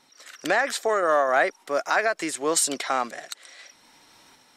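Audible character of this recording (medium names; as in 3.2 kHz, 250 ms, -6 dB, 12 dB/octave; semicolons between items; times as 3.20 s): random-step tremolo 3.9 Hz; MP3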